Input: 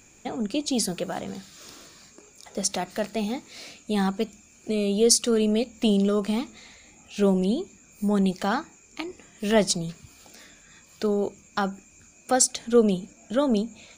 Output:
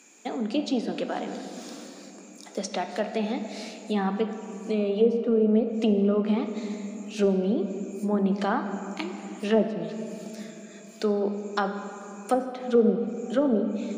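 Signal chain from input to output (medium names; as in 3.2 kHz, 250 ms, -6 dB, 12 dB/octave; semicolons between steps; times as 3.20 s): steep high-pass 200 Hz 36 dB/octave; low-pass that closes with the level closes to 570 Hz, closed at -17.5 dBFS; on a send: reverberation RT60 3.4 s, pre-delay 7 ms, DRR 6.5 dB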